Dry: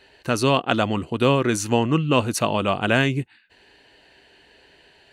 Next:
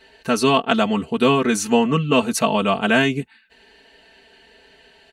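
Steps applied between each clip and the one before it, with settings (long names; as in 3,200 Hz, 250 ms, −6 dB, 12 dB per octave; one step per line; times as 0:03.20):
comb filter 4.5 ms, depth 92%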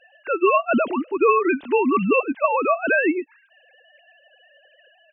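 three sine waves on the formant tracks
level −1.5 dB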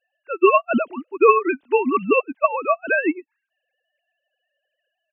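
expander for the loud parts 2.5 to 1, over −32 dBFS
level +5 dB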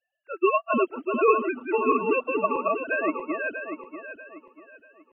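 feedback delay that plays each chunk backwards 320 ms, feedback 56%, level −3 dB
level −7.5 dB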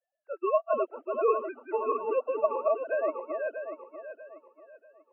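four-pole ladder band-pass 670 Hz, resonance 55%
level +6.5 dB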